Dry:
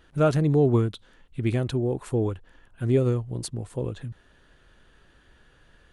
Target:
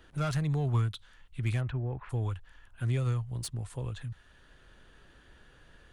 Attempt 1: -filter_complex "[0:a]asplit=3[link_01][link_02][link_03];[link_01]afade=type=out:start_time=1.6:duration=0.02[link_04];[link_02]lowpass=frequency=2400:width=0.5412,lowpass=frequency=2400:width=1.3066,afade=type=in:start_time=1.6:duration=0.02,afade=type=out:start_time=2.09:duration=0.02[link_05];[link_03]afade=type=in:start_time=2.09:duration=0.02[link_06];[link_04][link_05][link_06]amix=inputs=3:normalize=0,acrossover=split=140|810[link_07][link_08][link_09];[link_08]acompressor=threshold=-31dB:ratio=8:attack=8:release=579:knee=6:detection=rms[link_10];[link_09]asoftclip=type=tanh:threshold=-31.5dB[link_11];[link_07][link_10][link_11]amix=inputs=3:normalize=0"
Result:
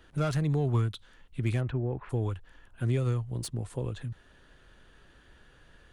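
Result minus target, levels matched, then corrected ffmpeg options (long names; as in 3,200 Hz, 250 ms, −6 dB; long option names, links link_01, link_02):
downward compressor: peak gain reduction −10.5 dB
-filter_complex "[0:a]asplit=3[link_01][link_02][link_03];[link_01]afade=type=out:start_time=1.6:duration=0.02[link_04];[link_02]lowpass=frequency=2400:width=0.5412,lowpass=frequency=2400:width=1.3066,afade=type=in:start_time=1.6:duration=0.02,afade=type=out:start_time=2.09:duration=0.02[link_05];[link_03]afade=type=in:start_time=2.09:duration=0.02[link_06];[link_04][link_05][link_06]amix=inputs=3:normalize=0,acrossover=split=140|810[link_07][link_08][link_09];[link_08]acompressor=threshold=-43dB:ratio=8:attack=8:release=579:knee=6:detection=rms[link_10];[link_09]asoftclip=type=tanh:threshold=-31.5dB[link_11];[link_07][link_10][link_11]amix=inputs=3:normalize=0"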